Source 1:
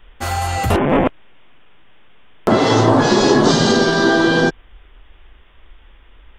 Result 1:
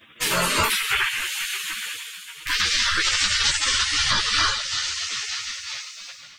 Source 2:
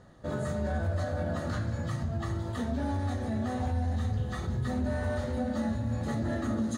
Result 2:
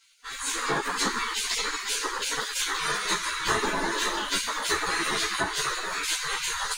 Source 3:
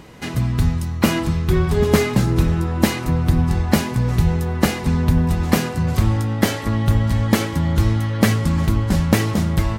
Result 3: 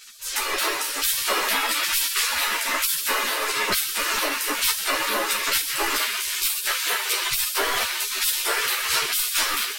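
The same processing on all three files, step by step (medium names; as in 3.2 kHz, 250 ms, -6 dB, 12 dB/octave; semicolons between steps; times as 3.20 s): peaking EQ 740 Hz +13 dB 0.68 oct; de-hum 63.02 Hz, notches 5; reverb removal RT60 1.2 s; two-slope reverb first 0.41 s, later 4.7 s, from -19 dB, DRR 0 dB; spectral gate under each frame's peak -30 dB weak; level rider gain up to 13 dB; feedback echo behind a high-pass 128 ms, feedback 51%, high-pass 3.2 kHz, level -17 dB; dynamic bell 6.7 kHz, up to -5 dB, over -36 dBFS, Q 2.5; compression 2.5:1, threshold -35 dBFS; loudness maximiser +20 dB; three-phase chorus; trim -5.5 dB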